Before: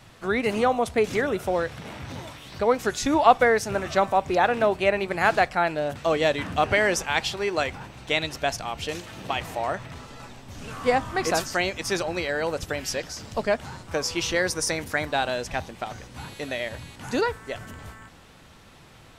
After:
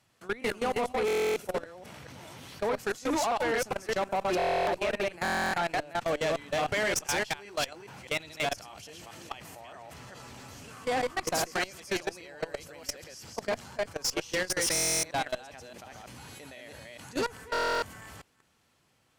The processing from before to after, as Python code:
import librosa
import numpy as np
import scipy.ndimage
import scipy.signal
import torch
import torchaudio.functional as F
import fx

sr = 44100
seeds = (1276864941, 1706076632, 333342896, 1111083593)

y = fx.reverse_delay(x, sr, ms=207, wet_db=-2.0)
y = fx.highpass(y, sr, hz=99.0, slope=6)
y = fx.high_shelf(y, sr, hz=4800.0, db=7.5)
y = fx.notch(y, sr, hz=3700.0, q=14.0)
y = fx.level_steps(y, sr, step_db=23)
y = fx.tube_stage(y, sr, drive_db=24.0, bias=0.3)
y = fx.buffer_glitch(y, sr, at_s=(1.06, 4.37, 5.23, 14.73, 17.52), block=1024, repeats=12)